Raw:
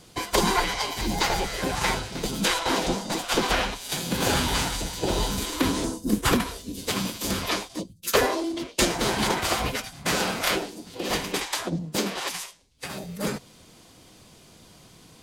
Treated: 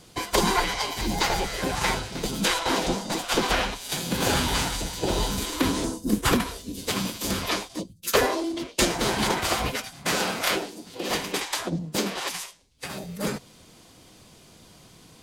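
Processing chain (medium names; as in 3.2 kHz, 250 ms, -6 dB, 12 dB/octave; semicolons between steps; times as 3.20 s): 9.70–11.48 s: bass shelf 97 Hz -9 dB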